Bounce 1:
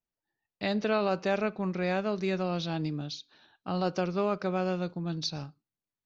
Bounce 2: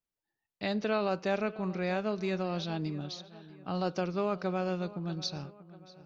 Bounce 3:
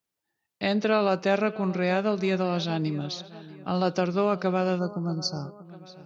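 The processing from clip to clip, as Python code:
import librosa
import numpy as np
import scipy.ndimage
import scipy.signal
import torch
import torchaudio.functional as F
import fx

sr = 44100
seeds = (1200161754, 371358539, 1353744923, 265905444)

y1 = fx.echo_filtered(x, sr, ms=639, feedback_pct=44, hz=3500.0, wet_db=-17.5)
y1 = y1 * 10.0 ** (-2.5 / 20.0)
y2 = fx.spec_box(y1, sr, start_s=4.79, length_s=0.86, low_hz=1500.0, high_hz=4200.0, gain_db=-28)
y2 = scipy.signal.sosfilt(scipy.signal.butter(2, 81.0, 'highpass', fs=sr, output='sos'), y2)
y2 = y2 * 10.0 ** (7.0 / 20.0)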